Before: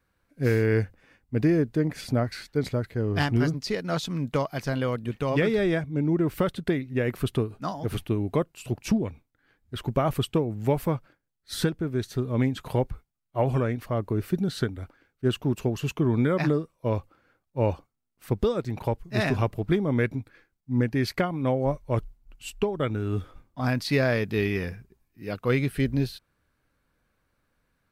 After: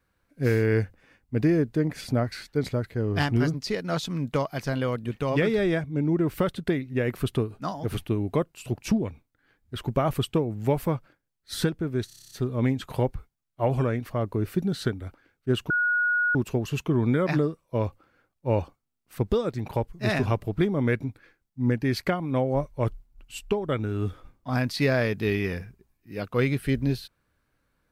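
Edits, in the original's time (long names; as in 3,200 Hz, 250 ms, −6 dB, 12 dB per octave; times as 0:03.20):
0:12.07: stutter 0.03 s, 9 plays
0:15.46: insert tone 1,450 Hz −20.5 dBFS 0.65 s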